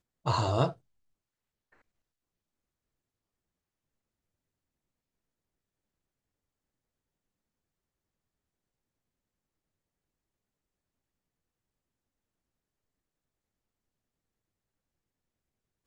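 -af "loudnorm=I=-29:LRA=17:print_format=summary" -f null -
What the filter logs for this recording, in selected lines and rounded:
Input Integrated:    -29.7 LUFS
Input True Peak:     -11.2 dBTP
Input LRA:             0.0 LU
Input Threshold:     -40.3 LUFS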